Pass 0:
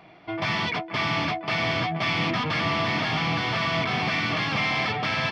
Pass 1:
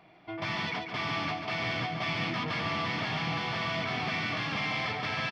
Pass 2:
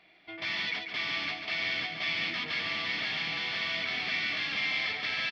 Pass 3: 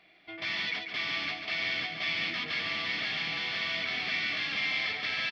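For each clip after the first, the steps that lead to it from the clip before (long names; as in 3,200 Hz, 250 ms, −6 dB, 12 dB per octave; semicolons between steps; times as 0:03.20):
repeating echo 142 ms, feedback 26%, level −6.5 dB; level −7.5 dB
graphic EQ with 10 bands 125 Hz −11 dB, 1,000 Hz −6 dB, 2,000 Hz +8 dB, 4,000 Hz +10 dB; level −6 dB
notch filter 920 Hz, Q 13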